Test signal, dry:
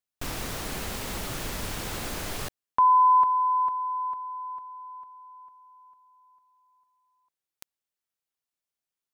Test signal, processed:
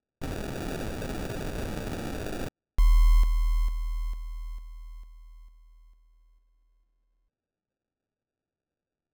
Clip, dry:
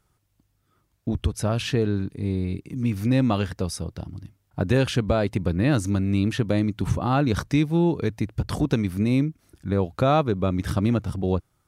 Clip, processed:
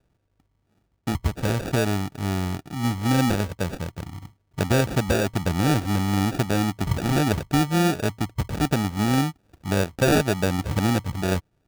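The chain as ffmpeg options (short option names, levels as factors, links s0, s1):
-af "acrusher=samples=42:mix=1:aa=0.000001"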